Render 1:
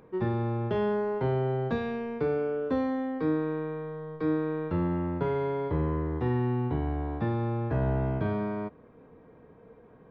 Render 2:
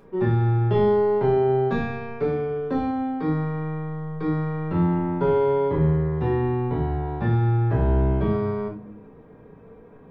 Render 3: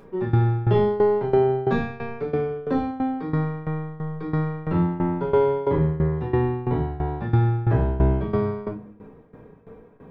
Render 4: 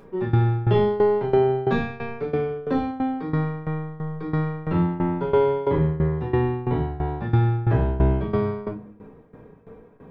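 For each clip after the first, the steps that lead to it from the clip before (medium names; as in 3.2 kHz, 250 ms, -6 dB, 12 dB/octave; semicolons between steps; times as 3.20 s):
reverberation RT60 0.45 s, pre-delay 5 ms, DRR -2 dB; trim +1 dB
tremolo saw down 3 Hz, depth 85%; trim +4 dB
dynamic bell 3 kHz, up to +4 dB, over -45 dBFS, Q 1.2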